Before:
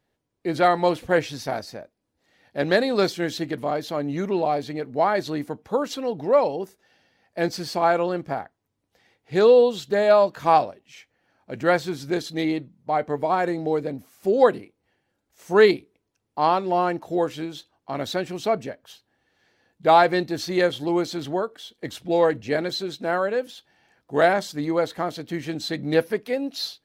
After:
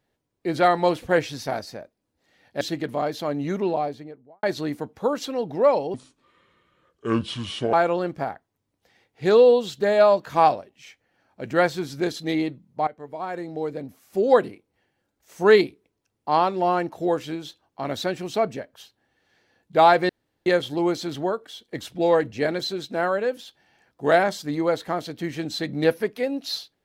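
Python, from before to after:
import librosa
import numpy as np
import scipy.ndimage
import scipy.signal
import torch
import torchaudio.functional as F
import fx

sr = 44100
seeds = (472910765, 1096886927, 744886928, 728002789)

y = fx.studio_fade_out(x, sr, start_s=4.22, length_s=0.9)
y = fx.edit(y, sr, fx.cut(start_s=2.61, length_s=0.69),
    fx.speed_span(start_s=6.63, length_s=1.2, speed=0.67),
    fx.fade_in_from(start_s=12.97, length_s=1.53, floor_db=-17.5),
    fx.room_tone_fill(start_s=20.19, length_s=0.37), tone=tone)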